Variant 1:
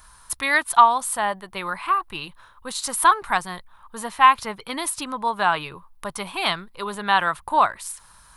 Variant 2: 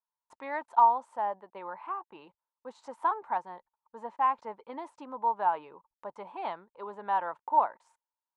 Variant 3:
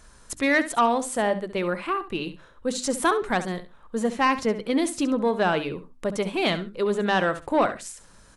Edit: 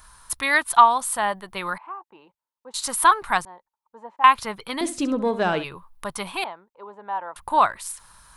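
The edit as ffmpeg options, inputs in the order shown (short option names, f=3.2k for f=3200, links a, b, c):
-filter_complex "[1:a]asplit=3[a][b][c];[0:a]asplit=5[d][e][f][g][h];[d]atrim=end=1.782[i];[a]atrim=start=1.778:end=2.742[j];[e]atrim=start=2.738:end=3.452[k];[b]atrim=start=3.448:end=4.242[l];[f]atrim=start=4.238:end=4.812[m];[2:a]atrim=start=4.808:end=5.642[n];[g]atrim=start=5.638:end=6.442[o];[c]atrim=start=6.438:end=7.362[p];[h]atrim=start=7.358[q];[i][j]acrossfade=d=0.004:c1=hsin:c2=hsin[r];[r][k]acrossfade=d=0.004:c1=hsin:c2=hsin[s];[s][l]acrossfade=d=0.004:c1=hsin:c2=hsin[t];[t][m]acrossfade=d=0.004:c1=hsin:c2=hsin[u];[u][n]acrossfade=d=0.004:c1=hsin:c2=hsin[v];[v][o]acrossfade=d=0.004:c1=hsin:c2=hsin[w];[w][p]acrossfade=d=0.004:c1=hsin:c2=hsin[x];[x][q]acrossfade=d=0.004:c1=hsin:c2=hsin"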